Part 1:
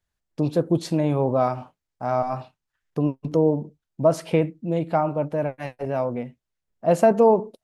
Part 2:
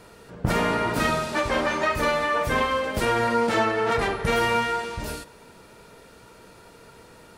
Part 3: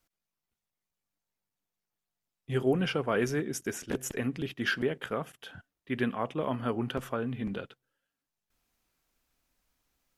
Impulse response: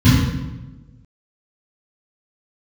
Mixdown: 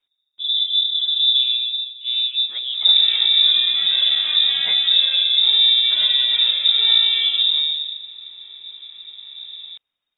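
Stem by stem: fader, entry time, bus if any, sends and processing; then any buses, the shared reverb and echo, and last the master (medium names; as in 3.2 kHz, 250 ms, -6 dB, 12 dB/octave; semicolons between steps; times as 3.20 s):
-19.5 dB, 0.00 s, send -15 dB, none
-18.5 dB, 2.40 s, send -8.5 dB, none
-3.5 dB, 0.00 s, no send, none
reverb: on, RT60 1.2 s, pre-delay 3 ms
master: frequency inversion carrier 3.7 kHz; compression 2:1, threshold -15 dBFS, peak gain reduction 6.5 dB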